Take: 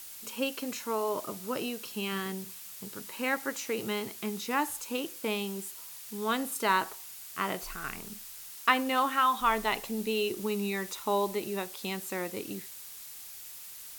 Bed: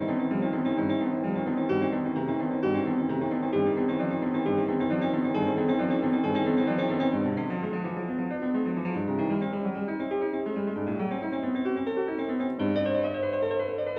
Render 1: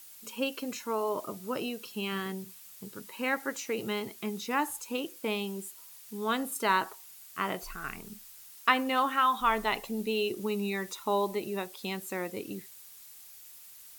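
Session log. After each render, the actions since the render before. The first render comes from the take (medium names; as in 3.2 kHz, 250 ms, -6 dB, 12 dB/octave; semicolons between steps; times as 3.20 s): noise reduction 7 dB, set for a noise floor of -46 dBFS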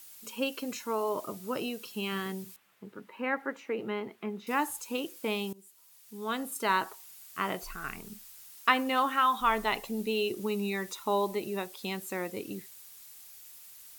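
2.56–4.47 s: three-band isolator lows -12 dB, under 160 Hz, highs -22 dB, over 2.6 kHz; 5.53–7.30 s: fade in equal-power, from -19.5 dB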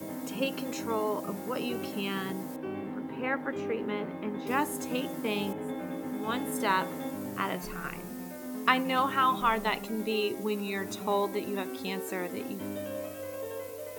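add bed -11 dB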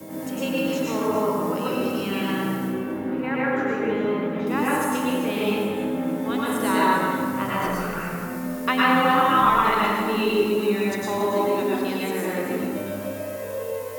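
echo whose repeats swap between lows and highs 141 ms, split 1.7 kHz, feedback 53%, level -5.5 dB; plate-style reverb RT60 1.5 s, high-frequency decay 0.5×, pre-delay 90 ms, DRR -6.5 dB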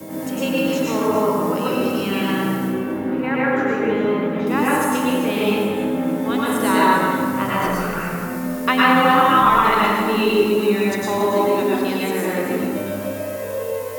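trim +4.5 dB; peak limiter -3 dBFS, peak gain reduction 1.5 dB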